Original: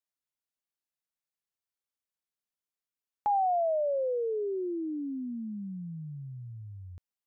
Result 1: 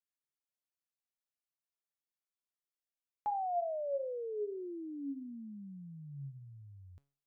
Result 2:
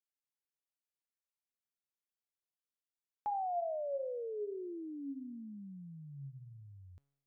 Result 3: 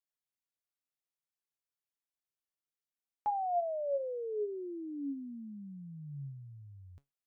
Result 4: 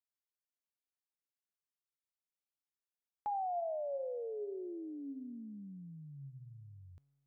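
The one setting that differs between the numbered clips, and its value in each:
tuned comb filter, decay: 0.43, 0.94, 0.18, 2.1 seconds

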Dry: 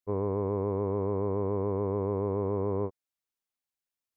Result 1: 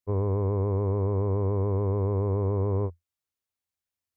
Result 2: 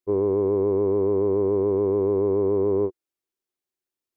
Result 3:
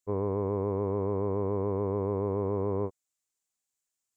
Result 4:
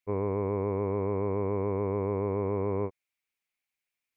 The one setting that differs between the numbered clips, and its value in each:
parametric band, centre frequency: 85, 360, 7,300, 2,300 Hertz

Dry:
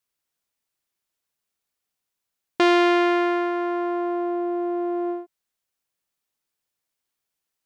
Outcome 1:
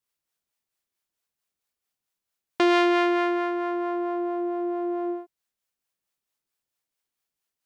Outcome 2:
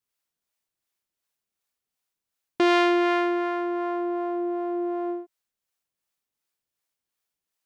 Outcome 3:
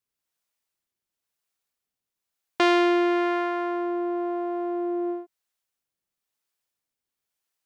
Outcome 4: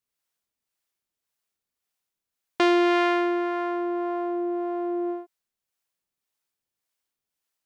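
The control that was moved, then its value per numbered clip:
two-band tremolo in antiphase, speed: 4.5, 2.7, 1, 1.8 Hertz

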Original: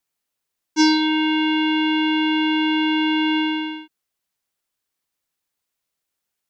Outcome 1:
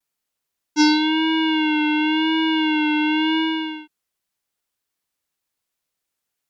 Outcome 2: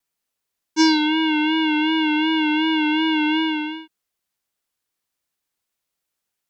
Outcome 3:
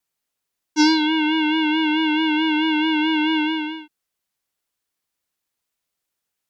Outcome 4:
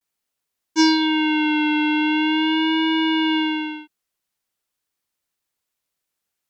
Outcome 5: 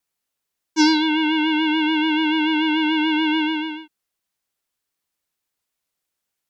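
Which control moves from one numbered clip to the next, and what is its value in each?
pitch vibrato, speed: 0.94, 2.7, 4.6, 0.43, 6.9 Hertz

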